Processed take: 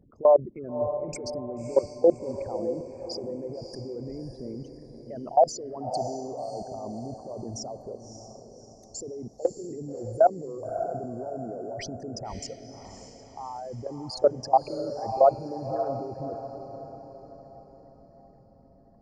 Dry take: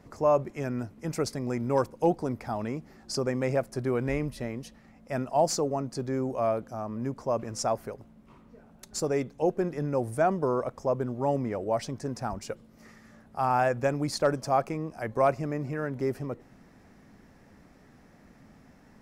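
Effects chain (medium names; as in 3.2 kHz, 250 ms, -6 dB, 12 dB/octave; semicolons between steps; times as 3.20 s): resonances exaggerated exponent 3; level held to a coarse grid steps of 22 dB; echo that smears into a reverb 590 ms, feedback 48%, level -9 dB; trim +7 dB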